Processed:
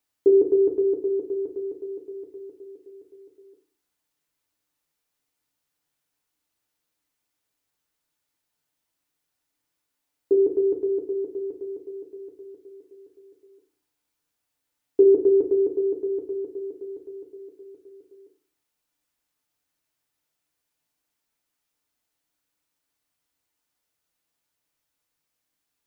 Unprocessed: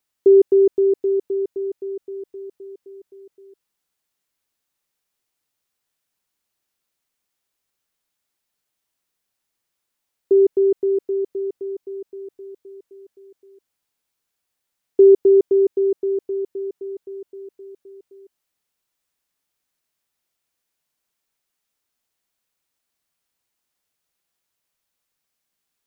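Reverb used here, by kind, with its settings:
feedback delay network reverb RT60 0.41 s, low-frequency decay 1.5×, high-frequency decay 0.45×, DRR 3 dB
level −2.5 dB

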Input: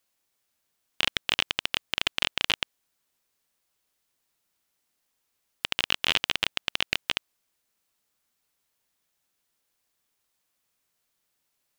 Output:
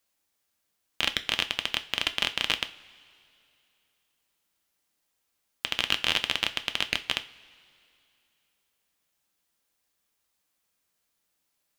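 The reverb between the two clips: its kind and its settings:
coupled-rooms reverb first 0.29 s, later 2.7 s, from −21 dB, DRR 8.5 dB
level −1 dB

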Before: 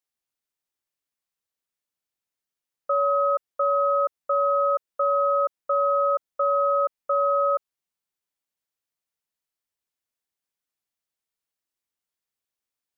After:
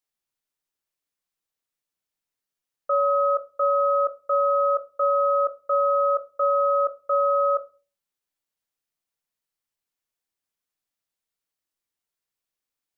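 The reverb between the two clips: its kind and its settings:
rectangular room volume 130 cubic metres, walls furnished, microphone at 0.49 metres

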